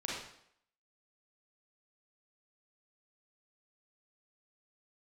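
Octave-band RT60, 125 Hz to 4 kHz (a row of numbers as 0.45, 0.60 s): 0.60, 0.65, 0.70, 0.70, 0.65, 0.65 s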